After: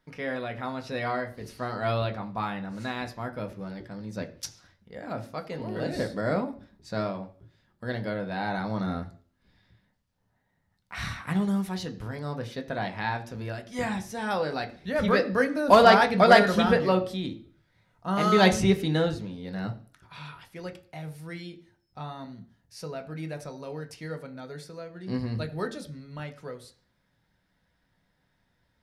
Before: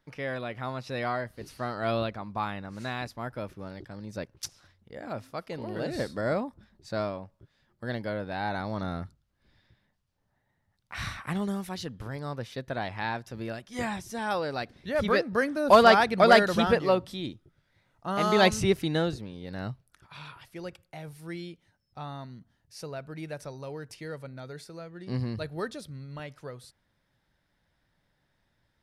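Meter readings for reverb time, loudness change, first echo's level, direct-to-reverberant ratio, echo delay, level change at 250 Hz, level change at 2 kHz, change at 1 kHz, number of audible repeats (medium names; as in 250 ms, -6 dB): 0.45 s, +1.5 dB, no echo, 4.5 dB, no echo, +3.5 dB, +1.5 dB, +1.5 dB, no echo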